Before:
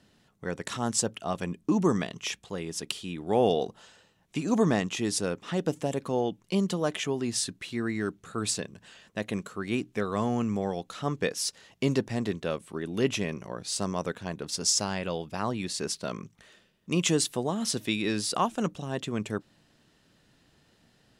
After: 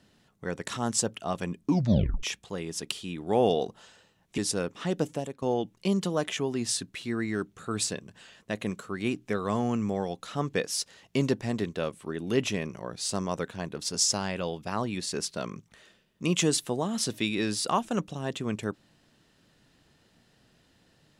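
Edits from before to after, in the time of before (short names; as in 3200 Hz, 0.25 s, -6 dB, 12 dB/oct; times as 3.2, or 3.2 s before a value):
1.67 tape stop 0.56 s
4.38–5.05 cut
5.76–6.09 fade out, to -17.5 dB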